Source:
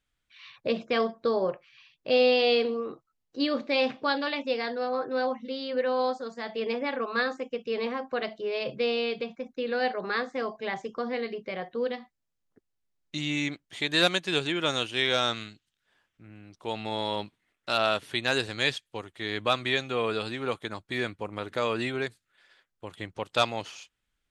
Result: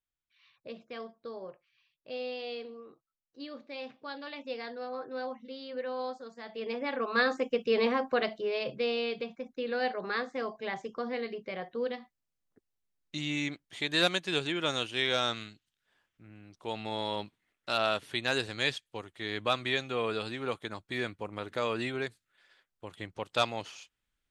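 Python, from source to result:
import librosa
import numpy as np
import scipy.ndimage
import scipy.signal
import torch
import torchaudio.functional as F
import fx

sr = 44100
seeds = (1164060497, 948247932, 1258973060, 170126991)

y = fx.gain(x, sr, db=fx.line((3.97, -16.0), (4.53, -9.0), (6.43, -9.0), (7.42, 3.5), (8.02, 3.5), (8.75, -3.5)))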